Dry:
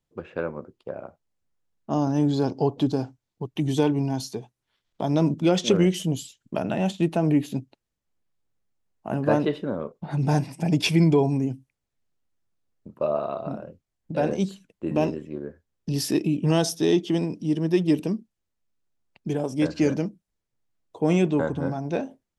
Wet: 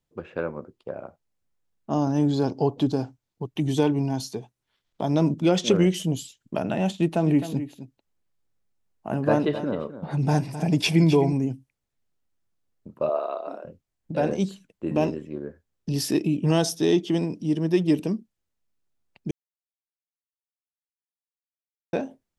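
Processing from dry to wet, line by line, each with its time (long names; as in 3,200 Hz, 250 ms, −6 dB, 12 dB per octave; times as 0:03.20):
0:06.91–0:11.33: single-tap delay 260 ms −12 dB
0:13.09–0:13.65: high-pass filter 350 Hz 24 dB per octave
0:19.31–0:21.93: silence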